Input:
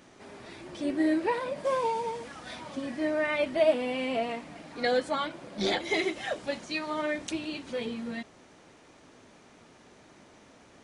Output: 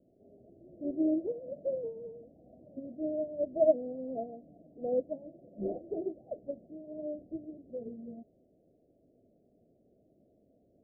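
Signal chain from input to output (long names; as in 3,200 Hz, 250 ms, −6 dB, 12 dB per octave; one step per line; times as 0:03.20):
Butterworth low-pass 690 Hz 96 dB per octave
expander for the loud parts 1.5 to 1, over −38 dBFS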